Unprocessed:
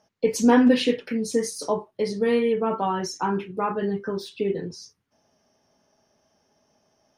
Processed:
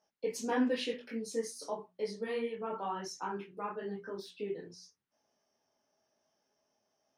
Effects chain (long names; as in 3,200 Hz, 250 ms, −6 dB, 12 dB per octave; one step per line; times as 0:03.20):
low-shelf EQ 180 Hz −11.5 dB
mains-hum notches 60/120/180/240 Hz
micro pitch shift up and down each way 33 cents
level −7.5 dB